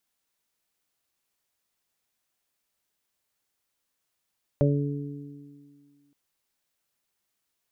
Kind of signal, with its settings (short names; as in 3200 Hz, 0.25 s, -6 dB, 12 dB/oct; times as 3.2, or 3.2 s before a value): additive tone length 1.52 s, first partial 143 Hz, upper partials -5.5/-6/-2 dB, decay 1.66 s, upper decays 2.33/1.45/0.34 s, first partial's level -19 dB